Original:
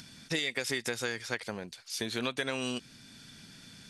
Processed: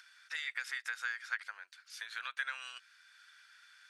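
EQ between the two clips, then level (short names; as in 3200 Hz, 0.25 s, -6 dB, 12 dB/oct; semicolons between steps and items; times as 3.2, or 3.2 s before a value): ladder high-pass 1300 Hz, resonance 60%; high shelf 2800 Hz -8.5 dB; +4.5 dB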